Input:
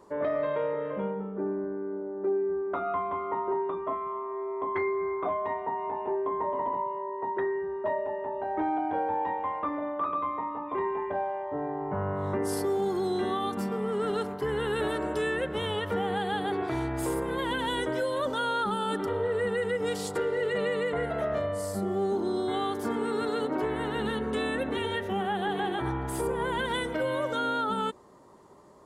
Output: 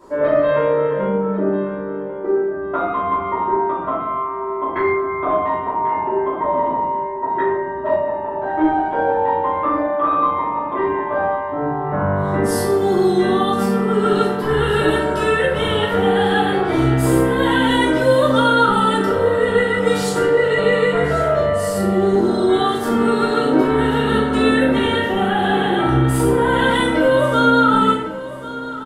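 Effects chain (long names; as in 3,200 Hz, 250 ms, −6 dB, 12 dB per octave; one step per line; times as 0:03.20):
repeating echo 1,093 ms, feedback 26%, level −15 dB
rectangular room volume 160 cubic metres, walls mixed, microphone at 2.9 metres
level +3 dB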